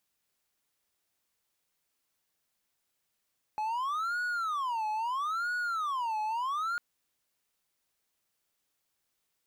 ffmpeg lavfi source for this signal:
-f lavfi -i "aevalsrc='0.0422*(1-4*abs(mod((1157*t-303/(2*PI*0.76)*sin(2*PI*0.76*t))+0.25,1)-0.5))':d=3.2:s=44100"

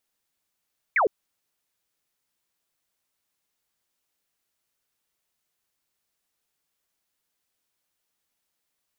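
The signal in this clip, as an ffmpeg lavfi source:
-f lavfi -i "aevalsrc='0.133*clip(t/0.002,0,1)*clip((0.11-t)/0.002,0,1)*sin(2*PI*2400*0.11/log(360/2400)*(exp(log(360/2400)*t/0.11)-1))':d=0.11:s=44100"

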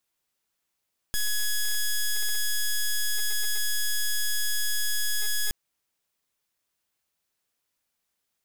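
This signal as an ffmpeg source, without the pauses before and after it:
-f lavfi -i "aevalsrc='0.0596*(2*lt(mod(1680*t,1),0.07)-1)':d=4.37:s=44100"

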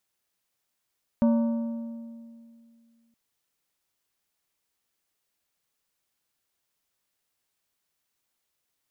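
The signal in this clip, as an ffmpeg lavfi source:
-f lavfi -i "aevalsrc='0.141*pow(10,-3*t/2.37)*sin(2*PI*231*t)+0.0501*pow(10,-3*t/1.8)*sin(2*PI*577.5*t)+0.0178*pow(10,-3*t/1.564)*sin(2*PI*924*t)+0.00631*pow(10,-3*t/1.462)*sin(2*PI*1155*t)+0.00224*pow(10,-3*t/1.352)*sin(2*PI*1501.5*t)':d=1.92:s=44100"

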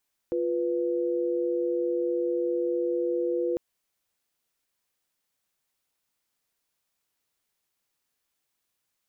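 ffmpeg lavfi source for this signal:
-f lavfi -i "aevalsrc='0.0447*(sin(2*PI*349.23*t)+sin(2*PI*493.88*t))':d=3.25:s=44100"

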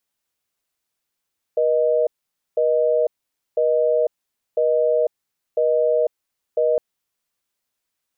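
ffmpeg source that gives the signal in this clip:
-f lavfi -i "aevalsrc='0.126*(sin(2*PI*480*t)+sin(2*PI*620*t))*clip(min(mod(t,1),0.5-mod(t,1))/0.005,0,1)':d=5.21:s=44100"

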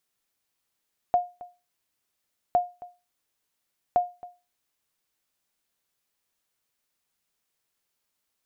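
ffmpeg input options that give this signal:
-f lavfi -i "aevalsrc='0.211*(sin(2*PI*712*mod(t,1.41))*exp(-6.91*mod(t,1.41)/0.28)+0.1*sin(2*PI*712*max(mod(t,1.41)-0.27,0))*exp(-6.91*max(mod(t,1.41)-0.27,0)/0.28))':d=4.23:s=44100"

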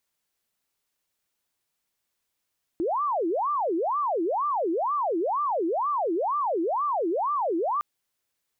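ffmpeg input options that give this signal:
-f lavfi -i "aevalsrc='0.0708*sin(2*PI*(757*t-433/(2*PI*2.1)*sin(2*PI*2.1*t)))':d=5.01:s=44100"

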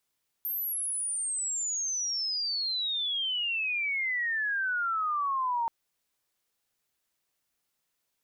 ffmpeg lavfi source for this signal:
-f lavfi -i "aevalsrc='pow(10,(-29.5+3.5*t/5.23)/20)*sin(2*PI*13000*5.23/log(910/13000)*(exp(log(910/13000)*t/5.23)-1))':d=5.23:s=44100"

